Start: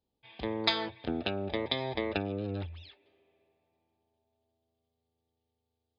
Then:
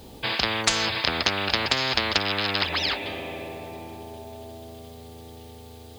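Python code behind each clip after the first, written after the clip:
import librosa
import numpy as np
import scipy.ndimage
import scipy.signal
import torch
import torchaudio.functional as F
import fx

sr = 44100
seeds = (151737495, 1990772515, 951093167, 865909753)

y = fx.spectral_comp(x, sr, ratio=10.0)
y = y * 10.0 ** (7.0 / 20.0)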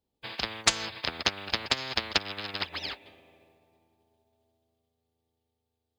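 y = fx.upward_expand(x, sr, threshold_db=-44.0, expansion=2.5)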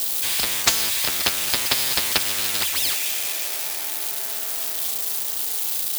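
y = x + 0.5 * 10.0 ** (-17.0 / 20.0) * np.diff(np.sign(x), prepend=np.sign(x[:1]))
y = y * 10.0 ** (3.0 / 20.0)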